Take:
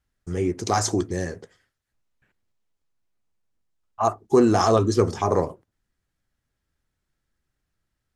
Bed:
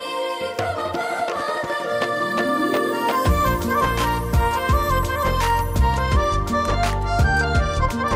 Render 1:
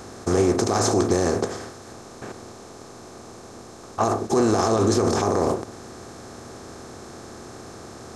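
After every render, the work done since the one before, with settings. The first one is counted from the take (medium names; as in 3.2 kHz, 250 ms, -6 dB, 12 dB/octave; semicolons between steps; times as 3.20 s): spectral levelling over time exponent 0.4; peak limiter -10.5 dBFS, peak gain reduction 10 dB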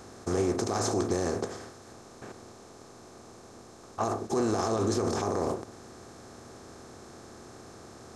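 trim -8 dB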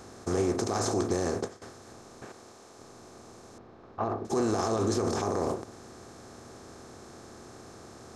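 0.85–1.62 s: expander -33 dBFS; 2.25–2.78 s: bass shelf 270 Hz -8.5 dB; 3.58–4.25 s: distance through air 340 m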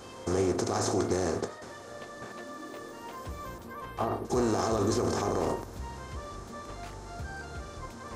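add bed -22.5 dB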